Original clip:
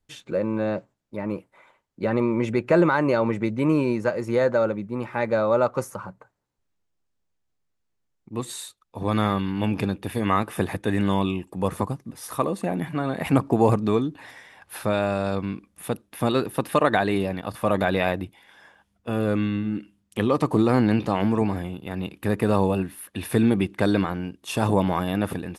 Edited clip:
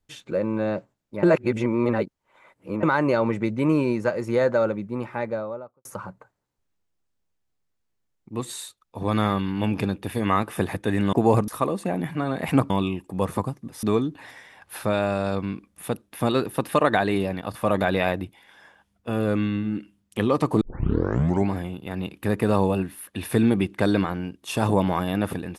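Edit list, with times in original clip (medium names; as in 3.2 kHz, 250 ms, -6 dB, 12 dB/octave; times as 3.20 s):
1.23–2.83 s: reverse
4.88–5.85 s: studio fade out
11.13–12.26 s: swap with 13.48–13.83 s
20.61 s: tape start 0.89 s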